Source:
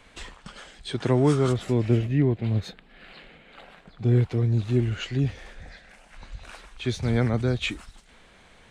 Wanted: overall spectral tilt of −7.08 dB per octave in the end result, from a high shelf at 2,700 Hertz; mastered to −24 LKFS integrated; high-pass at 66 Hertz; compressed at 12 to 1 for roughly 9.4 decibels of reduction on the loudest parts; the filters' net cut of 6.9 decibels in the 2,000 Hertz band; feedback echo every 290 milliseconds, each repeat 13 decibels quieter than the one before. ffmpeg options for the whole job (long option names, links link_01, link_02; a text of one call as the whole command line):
ffmpeg -i in.wav -af "highpass=66,equalizer=frequency=2000:width_type=o:gain=-7.5,highshelf=frequency=2700:gain=-3.5,acompressor=threshold=-25dB:ratio=12,aecho=1:1:290|580|870:0.224|0.0493|0.0108,volume=8dB" out.wav